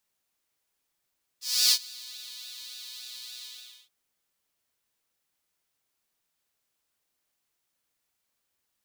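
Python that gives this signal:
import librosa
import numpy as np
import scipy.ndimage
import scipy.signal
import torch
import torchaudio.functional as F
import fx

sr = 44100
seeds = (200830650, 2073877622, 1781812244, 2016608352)

y = fx.sub_patch_pwm(sr, seeds[0], note=59, wave2='saw', interval_st=0, detune_cents=16, level2_db=-9.0, sub_db=-15.0, noise_db=-11.5, kind='highpass', cutoff_hz=3500.0, q=4.0, env_oct=0.5, env_decay_s=0.77, env_sustain_pct=40, attack_ms=301.0, decay_s=0.07, sustain_db=-23.5, release_s=0.47, note_s=2.01, lfo_hz=3.5, width_pct=30, width_swing_pct=7)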